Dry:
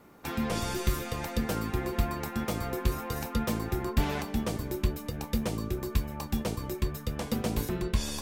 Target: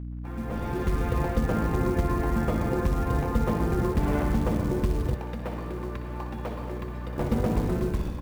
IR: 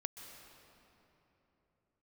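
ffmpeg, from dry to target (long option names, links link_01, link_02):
-filter_complex "[0:a]aecho=1:1:61|122|183|244:0.398|0.143|0.0516|0.0186,asoftclip=type=tanh:threshold=-15dB,acrusher=bits=7:mix=0:aa=0.000001[link_01];[1:a]atrim=start_sample=2205,asetrate=66150,aresample=44100[link_02];[link_01][link_02]afir=irnorm=-1:irlink=0,dynaudnorm=framelen=160:gausssize=9:maxgain=12dB,lowpass=1500,acompressor=threshold=-19dB:ratio=10,asettb=1/sr,asplit=3[link_03][link_04][link_05];[link_03]atrim=end=5.144[link_06];[link_04]atrim=start=5.14:end=7.18,asetpts=PTS-STARTPTS,afade=type=in:duration=0.004:curve=qsin,afade=type=out:start_time=2.036:duration=0.004:curve=qsin,highpass=frequency=810:poles=1[link_07];[link_05]atrim=start=7.176[link_08];[link_06][link_07]acrossfade=duration=0.004:curve1=hsin:curve2=qsin[link_09];[link_09][link_08]acrossfade=duration=0.004:curve1=qsin:curve2=hsin,acrusher=bits=6:mode=log:mix=0:aa=0.000001,aeval=exprs='val(0)+0.02*(sin(2*PI*60*n/s)+sin(2*PI*2*60*n/s)/2+sin(2*PI*3*60*n/s)/3+sin(2*PI*4*60*n/s)/4+sin(2*PI*5*60*n/s)/5)':channel_layout=same"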